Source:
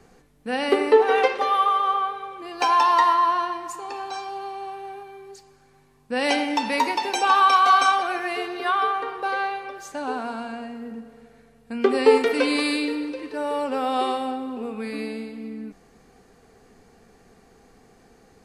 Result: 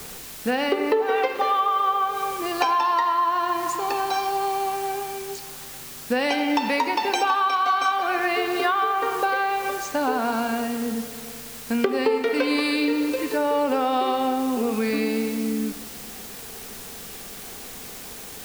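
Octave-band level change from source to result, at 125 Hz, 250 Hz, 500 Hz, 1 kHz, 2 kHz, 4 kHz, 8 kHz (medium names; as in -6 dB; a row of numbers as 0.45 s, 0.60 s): no reading, +3.5 dB, -1.0 dB, -1.0 dB, 0.0 dB, 0.0 dB, +4.5 dB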